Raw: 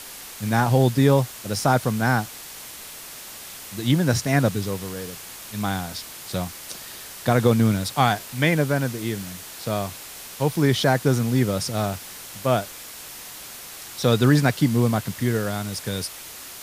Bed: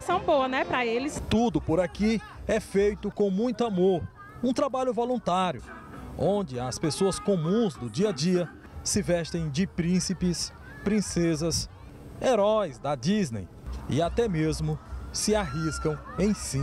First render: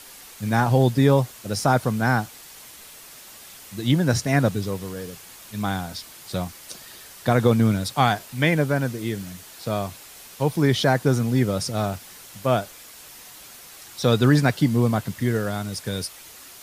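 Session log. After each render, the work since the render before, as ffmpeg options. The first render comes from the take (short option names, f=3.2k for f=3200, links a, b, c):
-af "afftdn=nr=6:nf=-39"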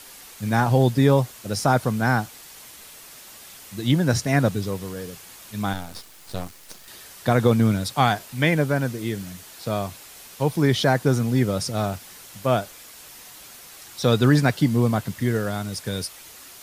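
-filter_complex "[0:a]asettb=1/sr,asplit=3[a][b][c];[a]atrim=end=5.734[d];[b]atrim=start=5.73:end=6.88,asetpts=PTS-STARTPTS,afade=t=in:d=0.004:c=qsin,afade=t=out:st=1.146:d=0.004:c=qsin,aeval=exprs='max(val(0),0)':c=same[e];[c]atrim=start=6.876[f];[d][e]acrossfade=d=0.004:c1=hsin:c2=qsin[g];[g][f]acrossfade=d=0.004:c1=qsin:c2=hsin"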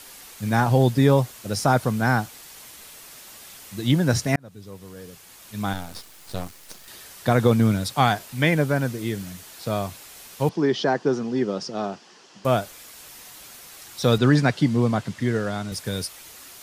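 -filter_complex "[0:a]asettb=1/sr,asplit=3[a][b][c];[a]atrim=end=10.494[d];[b]atrim=start=10.49:end=12.45,asetpts=PTS-STARTPTS,afade=t=in:d=0.004:c=qsin,afade=t=out:st=1.956:d=0.004:c=qsin,highpass=f=190:w=0.5412,highpass=f=190:w=1.3066,equalizer=f=250:t=q:w=4:g=-3,equalizer=f=380:t=q:w=4:g=4,equalizer=f=580:t=q:w=4:g=-4,equalizer=f=1.4k:t=q:w=4:g=-4,equalizer=f=2.2k:t=q:w=4:g=-9,equalizer=f=3.8k:t=q:w=4:g=-8,lowpass=f=5.4k:w=0.5412,lowpass=f=5.4k:w=1.3066[e];[c]atrim=start=12.446[f];[d][e]acrossfade=d=0.004:c1=hsin:c2=qsin[g];[g][f]acrossfade=d=0.004:c1=qsin:c2=hsin,asettb=1/sr,asplit=3[h][i][j];[h]atrim=end=14.184[k];[i]atrim=start=14.18:end=15.72,asetpts=PTS-STARTPTS,afade=t=in:d=0.004:c=qsin,afade=t=out:st=1.536:d=0.004:c=qsin,highpass=100,lowpass=6.9k[l];[j]atrim=start=15.716[m];[k][l]acrossfade=d=0.004:c1=hsin:c2=qsin[n];[n][m]acrossfade=d=0.004:c1=qsin:c2=hsin,asplit=2[o][p];[o]atrim=end=4.36,asetpts=PTS-STARTPTS,afade=t=out:st=4.356:d=0.004:c=hsin[q];[p]atrim=start=4.36,asetpts=PTS-STARTPTS,afade=t=in:d=1.45[r];[q][r]concat=n=2:v=0:a=1"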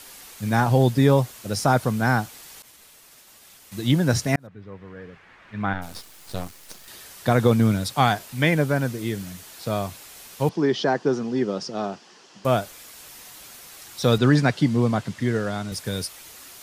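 -filter_complex "[0:a]asettb=1/sr,asplit=3[a][b][c];[a]atrim=end=2.624[d];[b]atrim=start=2.62:end=3.72,asetpts=PTS-STARTPTS,afade=t=in:d=0.004:c=qsin,afade=t=out:st=1.096:d=0.004:c=qsin,agate=range=-33dB:threshold=-39dB:ratio=3:release=100:detection=peak[e];[c]atrim=start=3.716[f];[d][e]acrossfade=d=0.004:c1=hsin:c2=qsin[g];[g][f]acrossfade=d=0.004:c1=qsin:c2=hsin,asplit=3[h][i][j];[h]afade=t=out:st=4.46:d=0.02[k];[i]lowpass=f=1.9k:t=q:w=2,afade=t=in:st=4.46:d=0.02,afade=t=out:st=5.81:d=0.02[l];[j]afade=t=in:st=5.81:d=0.02[m];[k][l][m]amix=inputs=3:normalize=0"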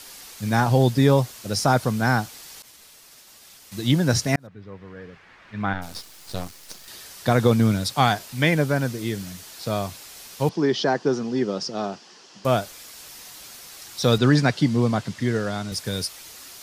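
-af "equalizer=f=5k:t=o:w=0.93:g=4.5"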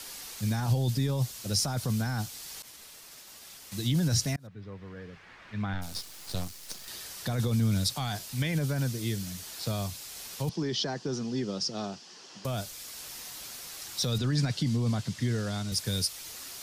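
-filter_complex "[0:a]alimiter=limit=-15.5dB:level=0:latency=1:release=15,acrossover=split=180|3000[a][b][c];[b]acompressor=threshold=-52dB:ratio=1.5[d];[a][d][c]amix=inputs=3:normalize=0"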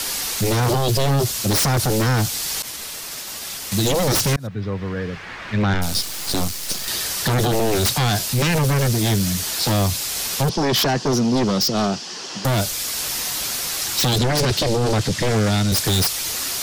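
-af "aeval=exprs='0.178*sin(PI/2*5.01*val(0)/0.178)':c=same"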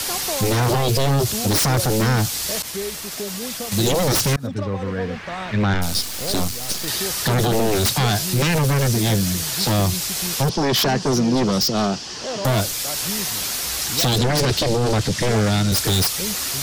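-filter_complex "[1:a]volume=-6dB[a];[0:a][a]amix=inputs=2:normalize=0"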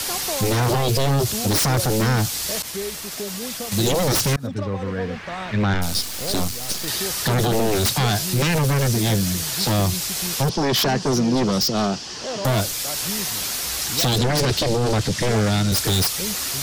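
-af "volume=-1dB"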